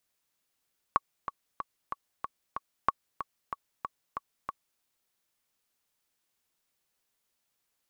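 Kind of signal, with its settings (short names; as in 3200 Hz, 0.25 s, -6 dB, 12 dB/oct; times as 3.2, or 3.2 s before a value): metronome 187 bpm, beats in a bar 6, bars 2, 1120 Hz, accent 11 dB -9.5 dBFS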